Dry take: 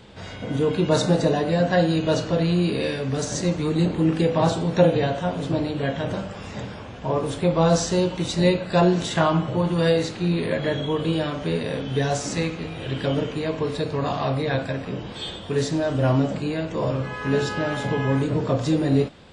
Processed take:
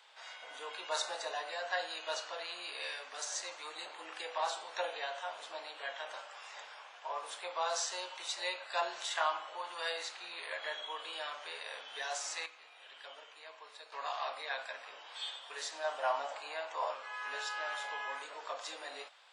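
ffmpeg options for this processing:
-filter_complex "[0:a]asettb=1/sr,asplit=3[a][b][c];[a]atrim=end=15.844[d];[b]atrim=start=15.84:end=16.94,asetpts=PTS-STARTPTS,afade=t=in:d=0.004:c=qsin,afade=t=out:st=1.096:d=0.004:c=qsin,equalizer=f=790:w=1.1:g=8[e];[c]atrim=start=16.936[f];[d][e]acrossfade=d=0.004:c1=hsin:c2=qsin[g];[g][f]acrossfade=d=0.004:c1=qsin:c2=hsin,asplit=3[h][i][j];[h]atrim=end=12.462[k];[i]atrim=start=12.458:end=13.922,asetpts=PTS-STARTPTS,volume=-8.5dB[l];[j]atrim=start=13.918[m];[k][l]acrossfade=d=0.004:c1=hsin:c2=hsin[n];[n][m]acrossfade=d=0.004:c1=hsin:c2=hsin,highpass=f=790:w=0.5412,highpass=f=790:w=1.3066,volume=-8dB"

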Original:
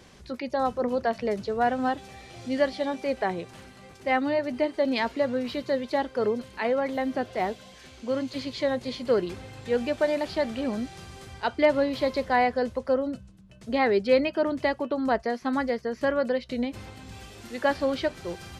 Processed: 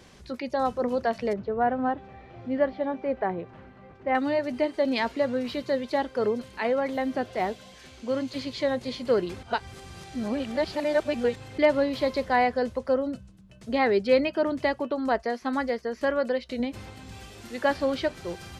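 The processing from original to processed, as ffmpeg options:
-filter_complex "[0:a]asettb=1/sr,asplit=3[a][b][c];[a]atrim=end=1.334[d];[b]atrim=start=1.33:end=4.15,asetpts=PTS-STARTPTS,afade=t=in:d=0.004:c=qsin,afade=t=out:st=2.816:d=0.004:c=qsin,lowpass=1.6k[e];[c]atrim=start=4.146[f];[d][e]acrossfade=d=0.004:c1=hsin:c2=qsin[g];[g][f]acrossfade=d=0.004:c1=qsin:c2=hsin,asettb=1/sr,asplit=3[h][i][j];[h]atrim=end=14.914[k];[i]atrim=start=14.91:end=16.6,asetpts=PTS-STARTPTS,afade=t=in:d=0.004:c=qsin,afade=t=out:st=1.686:d=0.004:c=qsin,equalizer=f=130:w=1.5:g=-10[l];[j]atrim=start=16.596[m];[k][l]acrossfade=d=0.004:c1=hsin:c2=qsin[n];[n][m]acrossfade=d=0.004:c1=qsin:c2=hsin,asplit=3[o][p][q];[o]atrim=end=9.432[r];[p]atrim=start=9.428:end=11.582,asetpts=PTS-STARTPTS,areverse[s];[q]atrim=start=11.578[t];[r][s]acrossfade=d=0.004:c1=hsin:c2=hsin[u];[u][t]acrossfade=d=0.004:c1=hsin:c2=hsin"

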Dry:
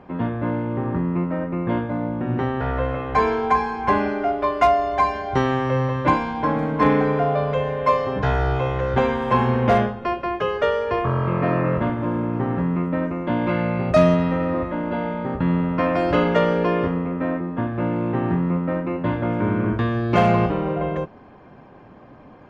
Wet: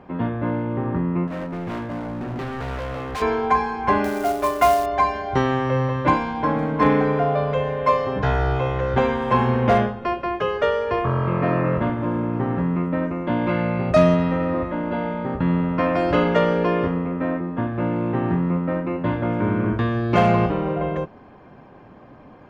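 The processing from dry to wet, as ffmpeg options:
-filter_complex "[0:a]asettb=1/sr,asplit=3[a][b][c];[a]atrim=end=1.274[d];[b]atrim=start=1.27:end=3.22,asetpts=PTS-STARTPTS,afade=t=in:d=0.004:c=qsin,afade=t=out:st=1.946:d=0.004:c=qsin,volume=26.5dB,asoftclip=hard,volume=-26.5dB[e];[c]atrim=start=3.216[f];[d][e]acrossfade=d=0.004:c1=hsin:c2=qsin[g];[g][f]acrossfade=d=0.004:c1=qsin:c2=hsin,asettb=1/sr,asplit=3[h][i][j];[h]atrim=end=4.044[k];[i]atrim=start=4.04:end=4.86,asetpts=PTS-STARTPTS,afade=t=in:d=0.004:c=qsin,afade=t=out:st=0.816:d=0.004:c=qsin,acrusher=bits=4:mode=log:mix=0:aa=0.000001[l];[j]atrim=start=4.856[m];[k][l]acrossfade=d=0.004:c1=hsin:c2=qsin[n];[n][m]acrossfade=d=0.004:c1=qsin:c2=hsin"

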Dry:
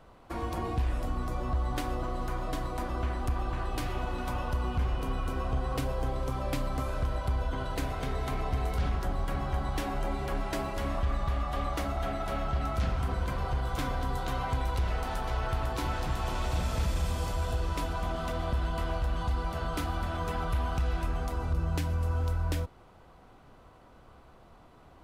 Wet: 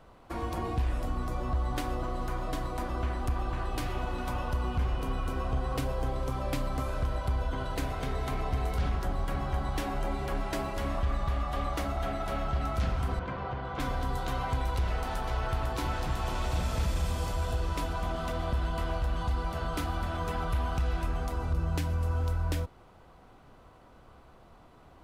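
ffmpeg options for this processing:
-filter_complex "[0:a]asettb=1/sr,asplit=3[a][b][c];[a]atrim=end=13.194[d];[b]atrim=start=13.19:end=13.8,asetpts=PTS-STARTPTS,afade=t=in:d=0.004:c=qsin,afade=t=out:st=0.606:d=0.004:c=qsin,highpass=110,lowpass=2.8k[e];[c]atrim=start=13.796[f];[d][e]acrossfade=d=0.004:c1=hsin:c2=qsin[g];[g][f]acrossfade=d=0.004:c1=qsin:c2=hsin"

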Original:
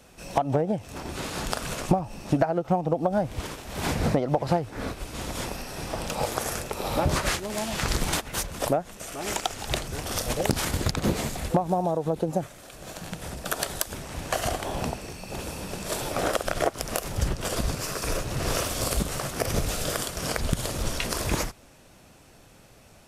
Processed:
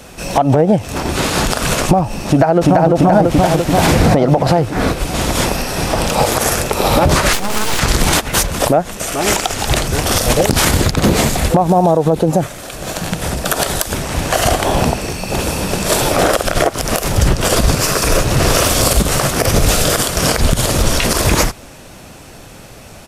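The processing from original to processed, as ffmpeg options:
-filter_complex "[0:a]asplit=2[a][b];[b]afade=t=in:st=2.27:d=0.01,afade=t=out:st=2.91:d=0.01,aecho=0:1:340|680|1020|1360|1700|2040|2380|2720|3060|3400|3740:1|0.65|0.4225|0.274625|0.178506|0.116029|0.0754189|0.0490223|0.0318645|0.0207119|0.0134627[c];[a][c]amix=inputs=2:normalize=0,asettb=1/sr,asplit=3[d][e][f];[d]atrim=end=7.334[g];[e]atrim=start=7.33:end=7.79,asetpts=PTS-STARTPTS,afade=t=in:d=0.004:c=qsin,afade=t=out:st=0.456:d=0.004:c=qsin,aeval=exprs='abs(val(0))':c=same[h];[f]atrim=start=7.786[i];[g][h]acrossfade=d=0.004:c1=hsin:c2=qsin[j];[j][i]acrossfade=d=0.004:c1=qsin:c2=hsin,alimiter=level_in=17.5dB:limit=-1dB:release=50:level=0:latency=1,volume=-1dB"

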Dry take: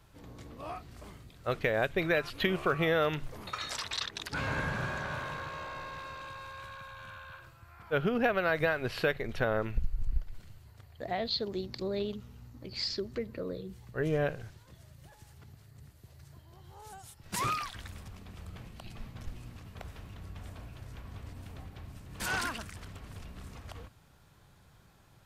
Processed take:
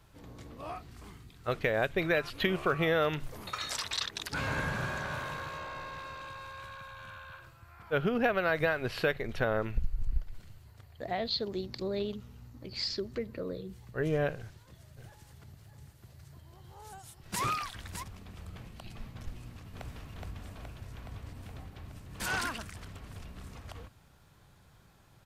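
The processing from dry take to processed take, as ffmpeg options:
-filter_complex "[0:a]asettb=1/sr,asplit=3[a][b][c];[a]atrim=end=0.914[d];[b]atrim=start=0.91:end=1.48,asetpts=PTS-STARTPTS,afade=t=in:d=0.004:c=qsin,afade=t=out:st=0.566:d=0.004:c=qsin,equalizer=f=580:w=5:g=-15[e];[c]atrim=start=1.476[f];[d][e]acrossfade=d=0.004:c1=hsin:c2=qsin[g];[g][f]acrossfade=d=0.004:c1=qsin:c2=hsin,asettb=1/sr,asplit=3[h][i][j];[h]atrim=end=3.204[k];[i]atrim=start=3.2:end=5.58,asetpts=PTS-STARTPTS,afade=t=in:d=0.004:c=qsin,afade=t=out:st=2.376:d=0.004:c=qsin,highshelf=f=7.1k:g=7[l];[j]atrim=start=5.576[m];[k][l]acrossfade=d=0.004:c1=hsin:c2=qsin[n];[n][m]acrossfade=d=0.004:c1=qsin:c2=hsin,asplit=3[o][p][q];[o]afade=t=out:st=14.96:d=0.02[r];[p]aecho=1:1:608:0.422,afade=t=in:st=14.96:d=0.02,afade=t=out:st=18.02:d=0.02[s];[q]afade=t=in:st=18.02:d=0.02[t];[r][s][t]amix=inputs=3:normalize=0,asplit=2[u][v];[v]afade=t=in:st=19.31:d=0.01,afade=t=out:st=19.88:d=0.01,aecho=0:1:420|840|1260|1680|2100|2520|2940|3360|3780|4200|4620|5040:0.794328|0.55603|0.389221|0.272455|0.190718|0.133503|0.0934519|0.0654163|0.0457914|0.032054|0.0224378|0.0157065[w];[u][w]amix=inputs=2:normalize=0"

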